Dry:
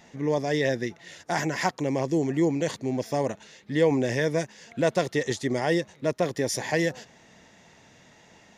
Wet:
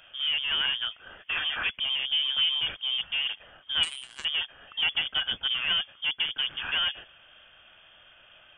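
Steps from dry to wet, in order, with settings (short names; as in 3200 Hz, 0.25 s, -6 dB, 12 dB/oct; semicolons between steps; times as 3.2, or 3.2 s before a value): one-sided clip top -26.5 dBFS, bottom -13.5 dBFS; inverted band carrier 3400 Hz; 3.83–4.25 power-law curve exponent 3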